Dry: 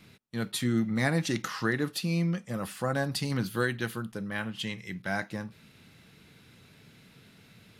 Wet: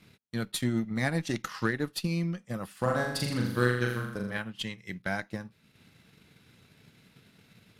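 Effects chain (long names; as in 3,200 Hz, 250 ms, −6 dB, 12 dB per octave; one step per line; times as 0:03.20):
transient designer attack +6 dB, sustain −6 dB
harmonic generator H 8 −30 dB, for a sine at −9 dBFS
0:02.79–0:04.38: flutter between parallel walls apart 7 metres, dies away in 0.76 s
level −3.5 dB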